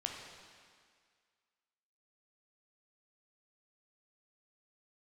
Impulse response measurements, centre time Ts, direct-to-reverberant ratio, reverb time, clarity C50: 73 ms, 0.5 dB, 1.9 s, 2.5 dB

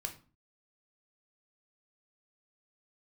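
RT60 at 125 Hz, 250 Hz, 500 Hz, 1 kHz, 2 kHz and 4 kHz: 0.55, 0.50, 0.40, 0.40, 0.30, 0.30 s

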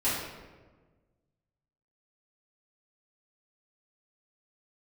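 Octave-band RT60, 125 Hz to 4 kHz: 1.9, 1.7, 1.5, 1.2, 1.0, 0.80 s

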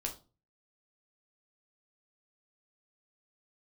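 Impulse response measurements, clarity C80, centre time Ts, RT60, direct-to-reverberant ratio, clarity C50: 18.5 dB, 14 ms, 0.35 s, 1.0 dB, 11.5 dB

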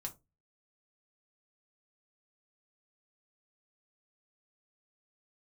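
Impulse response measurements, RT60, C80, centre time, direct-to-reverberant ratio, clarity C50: 0.25 s, 26.5 dB, 9 ms, 1.0 dB, 18.0 dB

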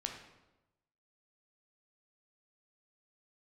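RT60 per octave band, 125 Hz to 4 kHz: 1.2, 1.1, 1.1, 0.95, 0.80, 0.75 s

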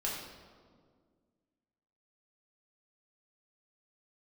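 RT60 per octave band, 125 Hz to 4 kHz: 2.2, 2.5, 2.1, 1.7, 1.2, 1.1 s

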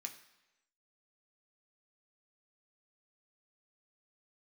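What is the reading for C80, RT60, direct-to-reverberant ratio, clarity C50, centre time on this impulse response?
13.5 dB, 1.0 s, 3.0 dB, 11.0 dB, 13 ms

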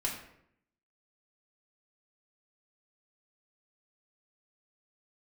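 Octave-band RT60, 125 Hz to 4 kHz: 0.85, 0.90, 0.75, 0.70, 0.65, 0.50 s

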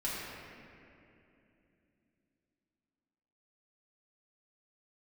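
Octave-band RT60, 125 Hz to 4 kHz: 3.8, 4.2, 3.2, 2.4, 2.6, 1.8 s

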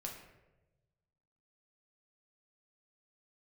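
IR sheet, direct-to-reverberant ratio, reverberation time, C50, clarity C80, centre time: -0.5 dB, 1.1 s, 5.5 dB, 8.0 dB, 35 ms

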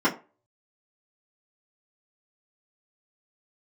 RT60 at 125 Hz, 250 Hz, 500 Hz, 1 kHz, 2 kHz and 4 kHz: 0.30, 0.25, 0.35, 0.30, 0.25, 0.20 s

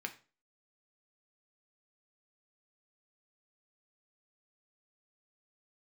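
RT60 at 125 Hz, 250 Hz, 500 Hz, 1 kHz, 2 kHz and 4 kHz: 0.40, 0.40, 0.35, 0.35, 0.30, 0.30 s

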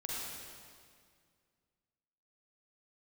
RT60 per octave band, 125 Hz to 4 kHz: 2.5, 2.4, 2.1, 2.0, 1.9, 1.8 s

